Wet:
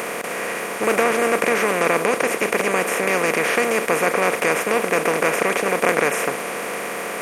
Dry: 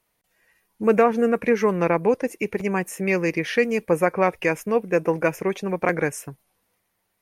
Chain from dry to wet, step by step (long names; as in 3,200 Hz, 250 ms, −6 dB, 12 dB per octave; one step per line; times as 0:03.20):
compressor on every frequency bin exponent 0.2
spectral tilt +2 dB per octave
level −5 dB